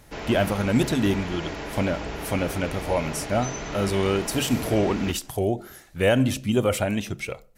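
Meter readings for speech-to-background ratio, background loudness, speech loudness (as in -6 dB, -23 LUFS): 8.5 dB, -34.0 LUFS, -25.5 LUFS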